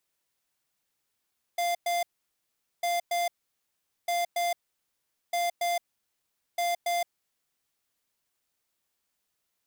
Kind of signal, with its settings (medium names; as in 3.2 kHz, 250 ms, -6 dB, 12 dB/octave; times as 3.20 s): beep pattern square 695 Hz, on 0.17 s, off 0.11 s, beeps 2, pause 0.80 s, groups 5, -27.5 dBFS